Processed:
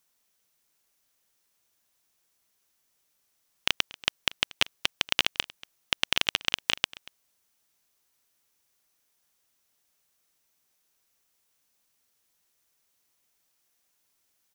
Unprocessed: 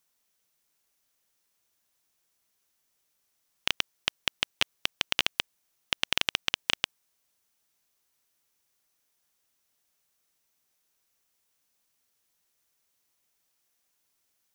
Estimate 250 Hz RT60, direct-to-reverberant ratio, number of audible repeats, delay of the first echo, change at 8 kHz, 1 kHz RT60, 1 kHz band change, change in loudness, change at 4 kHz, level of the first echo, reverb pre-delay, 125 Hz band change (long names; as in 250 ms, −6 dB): no reverb audible, no reverb audible, 1, 235 ms, +2.0 dB, no reverb audible, +2.0 dB, +2.0 dB, +2.0 dB, −21.0 dB, no reverb audible, +2.0 dB